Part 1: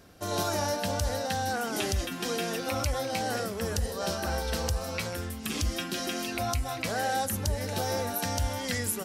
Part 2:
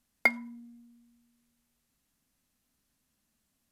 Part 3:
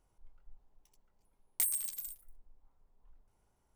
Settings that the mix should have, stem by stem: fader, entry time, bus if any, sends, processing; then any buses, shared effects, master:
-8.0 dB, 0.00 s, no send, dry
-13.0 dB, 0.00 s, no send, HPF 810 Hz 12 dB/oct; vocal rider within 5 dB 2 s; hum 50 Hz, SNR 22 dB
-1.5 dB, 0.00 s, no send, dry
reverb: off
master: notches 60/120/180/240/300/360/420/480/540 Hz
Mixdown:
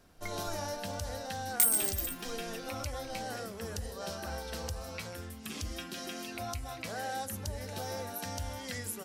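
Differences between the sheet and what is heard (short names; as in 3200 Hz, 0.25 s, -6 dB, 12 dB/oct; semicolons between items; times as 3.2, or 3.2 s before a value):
stem 2 -13.0 dB -> -21.0 dB; stem 3 -1.5 dB -> +6.5 dB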